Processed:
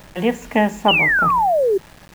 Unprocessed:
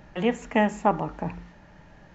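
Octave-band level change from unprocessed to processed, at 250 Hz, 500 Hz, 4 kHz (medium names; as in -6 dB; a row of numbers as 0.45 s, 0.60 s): +5.0 dB, +9.5 dB, +19.0 dB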